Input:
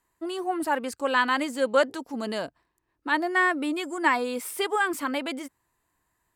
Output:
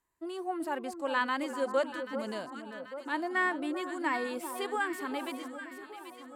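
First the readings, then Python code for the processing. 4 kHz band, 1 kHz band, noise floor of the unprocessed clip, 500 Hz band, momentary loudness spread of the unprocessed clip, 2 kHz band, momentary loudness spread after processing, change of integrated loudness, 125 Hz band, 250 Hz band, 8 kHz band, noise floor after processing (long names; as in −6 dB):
−9.0 dB, −7.0 dB, −76 dBFS, −6.5 dB, 11 LU, −7.5 dB, 12 LU, −7.5 dB, can't be measured, −6.0 dB, −9.5 dB, −50 dBFS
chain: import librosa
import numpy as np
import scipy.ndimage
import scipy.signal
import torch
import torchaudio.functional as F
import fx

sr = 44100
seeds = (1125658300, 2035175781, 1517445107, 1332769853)

y = fx.echo_alternate(x, sr, ms=392, hz=1200.0, feedback_pct=73, wet_db=-8.0)
y = fx.hpss(y, sr, part='percussive', gain_db=-5)
y = F.gain(torch.from_numpy(y), -6.5).numpy()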